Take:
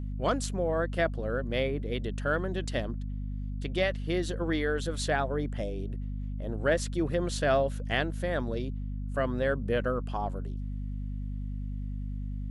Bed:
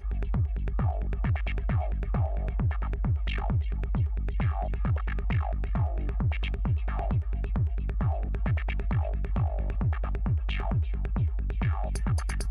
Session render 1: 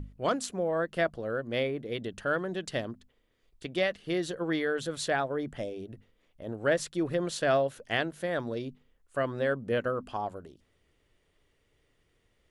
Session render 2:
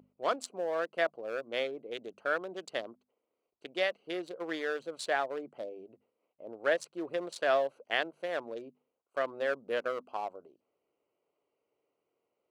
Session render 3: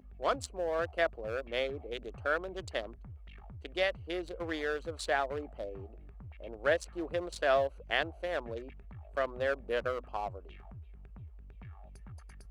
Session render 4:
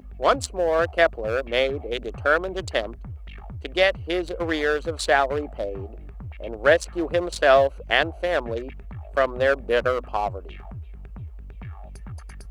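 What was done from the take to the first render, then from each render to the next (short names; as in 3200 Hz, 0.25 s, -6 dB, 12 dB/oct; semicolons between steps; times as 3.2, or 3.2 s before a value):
notches 50/100/150/200/250 Hz
Wiener smoothing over 25 samples; HPF 500 Hz 12 dB/oct
add bed -21.5 dB
gain +11.5 dB; limiter -3 dBFS, peak gain reduction 1 dB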